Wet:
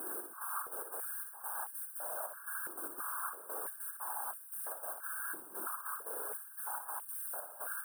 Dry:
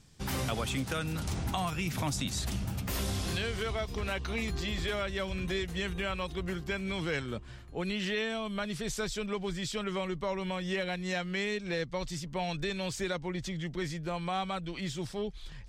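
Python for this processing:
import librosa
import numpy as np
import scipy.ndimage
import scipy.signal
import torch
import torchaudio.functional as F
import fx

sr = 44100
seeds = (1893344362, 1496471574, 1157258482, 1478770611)

p1 = fx.lower_of_two(x, sr, delay_ms=4.5)
p2 = fx.spec_gate(p1, sr, threshold_db=-25, keep='weak')
p3 = fx.high_shelf(p2, sr, hz=11000.0, db=-10.0)
p4 = fx.fixed_phaser(p3, sr, hz=2000.0, stages=6)
p5 = fx.vibrato(p4, sr, rate_hz=9.8, depth_cents=6.9)
p6 = fx.quant_dither(p5, sr, seeds[0], bits=8, dither='triangular')
p7 = fx.step_gate(p6, sr, bpm=73, pattern='xx..xx.x.x', floor_db=-12.0, edge_ms=4.5)
p8 = fx.stretch_vocoder(p7, sr, factor=0.5)
p9 = p8 + fx.room_flutter(p8, sr, wall_m=10.5, rt60_s=0.51, dry=0)
p10 = fx.whisperise(p9, sr, seeds[1])
p11 = fx.brickwall_bandstop(p10, sr, low_hz=1700.0, high_hz=8300.0)
p12 = fx.filter_held_highpass(p11, sr, hz=3.0, low_hz=330.0, high_hz=2900.0)
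y = p12 * librosa.db_to_amplitude(9.5)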